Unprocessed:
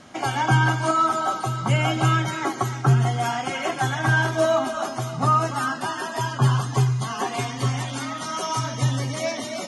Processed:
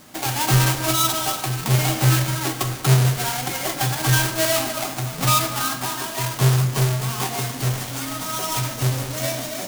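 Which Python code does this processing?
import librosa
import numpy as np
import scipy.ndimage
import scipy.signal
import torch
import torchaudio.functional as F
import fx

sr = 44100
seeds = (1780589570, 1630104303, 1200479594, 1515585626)

y = fx.halfwave_hold(x, sr)
y = fx.high_shelf(y, sr, hz=3900.0, db=11.5)
y = fx.room_shoebox(y, sr, seeds[0], volume_m3=340.0, walls='mixed', distance_m=0.52)
y = y * librosa.db_to_amplitude(-7.0)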